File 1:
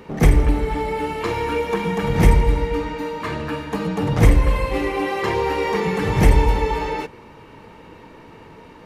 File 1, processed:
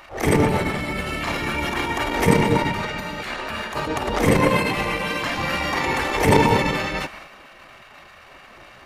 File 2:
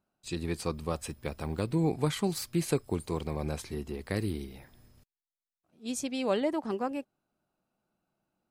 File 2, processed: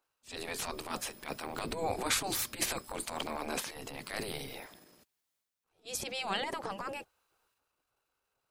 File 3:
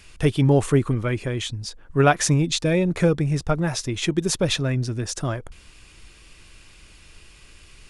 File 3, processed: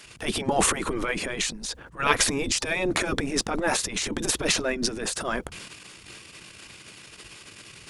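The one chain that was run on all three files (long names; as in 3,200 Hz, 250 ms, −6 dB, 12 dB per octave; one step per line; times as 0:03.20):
transient designer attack −10 dB, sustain +7 dB
dynamic equaliser 190 Hz, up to +4 dB, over −35 dBFS
gate on every frequency bin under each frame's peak −10 dB weak
level +5 dB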